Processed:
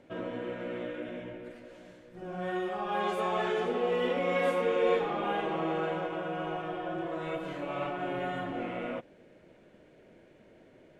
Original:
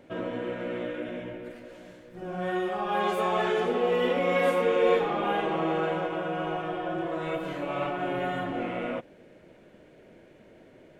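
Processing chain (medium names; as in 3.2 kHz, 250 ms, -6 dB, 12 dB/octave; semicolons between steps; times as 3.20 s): low-pass 11 kHz 12 dB/octave; trim -4 dB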